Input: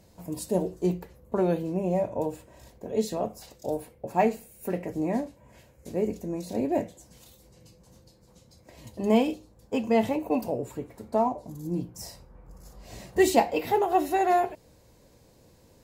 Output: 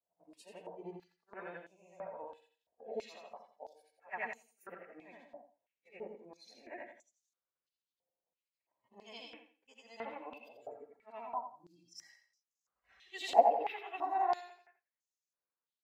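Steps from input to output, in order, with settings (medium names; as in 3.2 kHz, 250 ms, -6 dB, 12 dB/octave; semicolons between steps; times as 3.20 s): short-time spectra conjugated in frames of 206 ms; gate -48 dBFS, range -11 dB; spectral noise reduction 14 dB; feedback delay 86 ms, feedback 29%, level -8 dB; step-sequenced band-pass 3 Hz 710–6400 Hz; trim +3 dB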